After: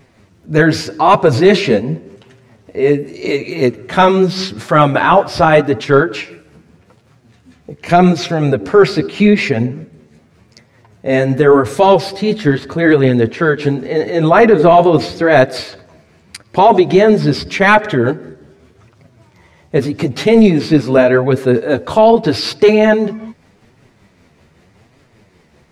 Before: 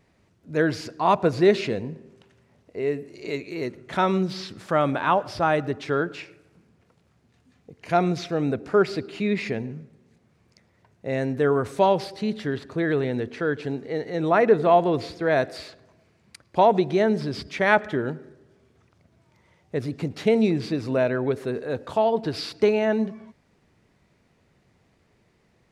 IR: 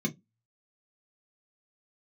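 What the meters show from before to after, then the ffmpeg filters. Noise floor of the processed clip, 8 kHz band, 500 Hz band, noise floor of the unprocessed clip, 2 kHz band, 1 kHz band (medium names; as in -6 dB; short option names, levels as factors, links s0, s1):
-51 dBFS, no reading, +11.5 dB, -64 dBFS, +12.0 dB, +11.0 dB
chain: -af "tremolo=f=5.2:d=0.37,flanger=delay=7.1:depth=6.9:regen=10:speed=0.84:shape=triangular,apsyclip=10,volume=0.841"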